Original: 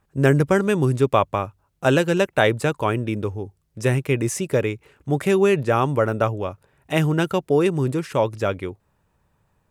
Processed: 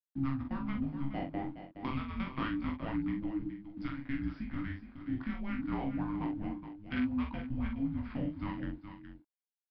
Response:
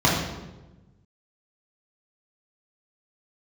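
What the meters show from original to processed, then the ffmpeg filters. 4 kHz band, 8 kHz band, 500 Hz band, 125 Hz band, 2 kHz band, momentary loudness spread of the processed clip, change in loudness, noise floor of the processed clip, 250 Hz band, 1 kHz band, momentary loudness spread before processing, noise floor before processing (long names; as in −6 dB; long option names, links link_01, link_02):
−19.5 dB, below −40 dB, −29.0 dB, −17.5 dB, −18.5 dB, 7 LU, −16.0 dB, below −85 dBFS, −10.0 dB, −18.0 dB, 11 LU, −68 dBFS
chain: -filter_complex "[0:a]agate=range=-33dB:threshold=-51dB:ratio=3:detection=peak,equalizer=frequency=640:width_type=o:width=2.1:gain=-13.5,acompressor=threshold=-31dB:ratio=4,afreqshift=-410,acrusher=bits=8:mix=0:aa=0.000001,adynamicsmooth=sensitivity=4:basefreq=1300,flanger=delay=15.5:depth=8:speed=0.28,asplit=2[link_01][link_02];[link_02]adelay=44,volume=-5dB[link_03];[link_01][link_03]amix=inputs=2:normalize=0,aecho=1:1:419:0.299,aresample=11025,aresample=44100,adynamicequalizer=threshold=0.00141:dfrequency=2700:dqfactor=0.7:tfrequency=2700:tqfactor=0.7:attack=5:release=100:ratio=0.375:range=2.5:mode=cutabove:tftype=highshelf"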